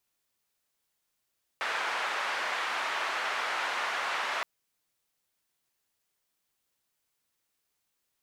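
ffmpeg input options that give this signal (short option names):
-f lavfi -i "anoisesrc=c=white:d=2.82:r=44100:seed=1,highpass=f=900,lowpass=f=1600,volume=-13.1dB"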